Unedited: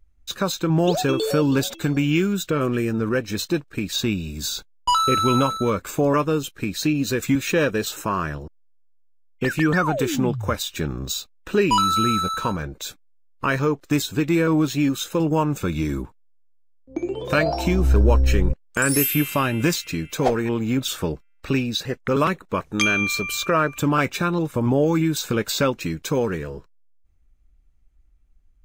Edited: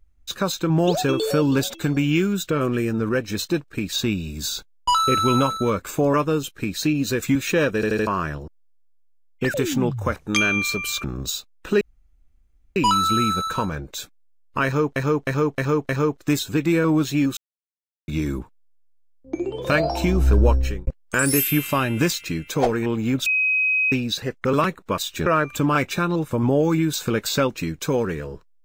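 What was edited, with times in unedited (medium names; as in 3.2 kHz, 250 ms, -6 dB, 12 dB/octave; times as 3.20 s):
7.75 s: stutter in place 0.08 s, 4 plays
9.54–9.96 s: delete
10.58–10.86 s: swap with 22.61–23.49 s
11.63 s: insert room tone 0.95 s
13.52–13.83 s: loop, 5 plays
15.00–15.71 s: mute
18.11–18.50 s: fade out
20.89–21.55 s: bleep 2.53 kHz -17 dBFS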